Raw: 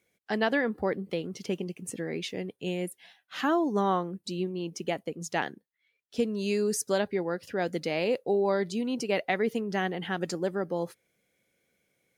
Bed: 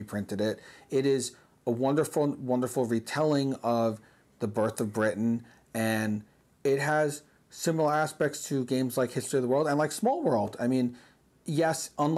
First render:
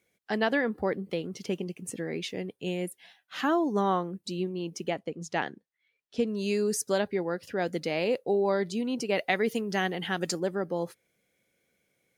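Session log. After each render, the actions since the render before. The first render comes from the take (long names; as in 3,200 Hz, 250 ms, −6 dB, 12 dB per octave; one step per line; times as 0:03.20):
0:04.88–0:06.27: high-frequency loss of the air 60 metres
0:09.18–0:10.40: high-shelf EQ 2,900 Hz +8 dB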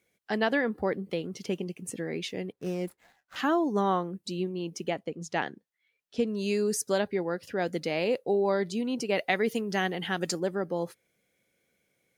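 0:02.52–0:03.36: running median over 15 samples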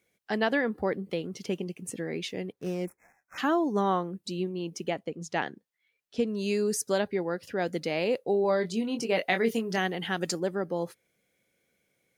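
0:02.85–0:03.38: linear-phase brick-wall band-stop 2,600–5,200 Hz
0:08.42–0:09.78: double-tracking delay 22 ms −7 dB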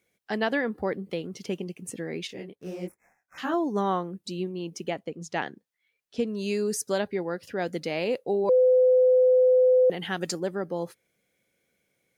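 0:02.27–0:03.54: micro pitch shift up and down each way 52 cents
0:08.49–0:09.90: beep over 508 Hz −15.5 dBFS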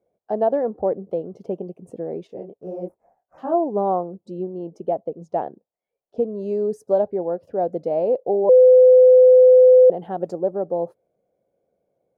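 drawn EQ curve 270 Hz 0 dB, 660 Hz +12 dB, 2,000 Hz −22 dB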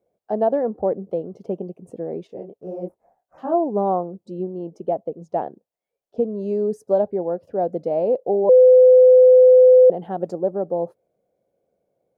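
dynamic equaliser 210 Hz, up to +3 dB, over −35 dBFS, Q 1.9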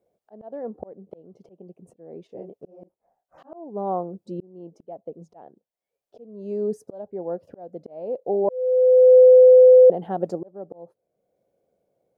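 volume swells 683 ms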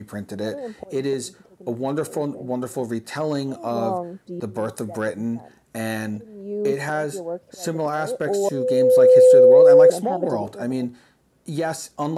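mix in bed +1.5 dB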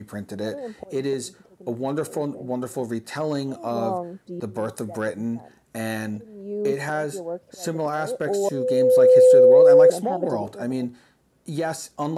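level −1.5 dB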